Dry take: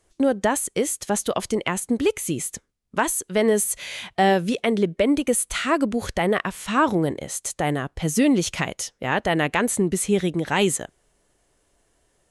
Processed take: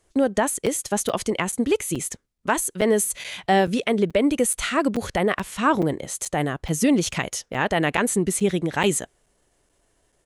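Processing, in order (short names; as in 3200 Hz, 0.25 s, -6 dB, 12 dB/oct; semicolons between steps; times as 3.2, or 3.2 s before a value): tempo 1.2×; crackling interface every 0.43 s, samples 256, zero, from 0.66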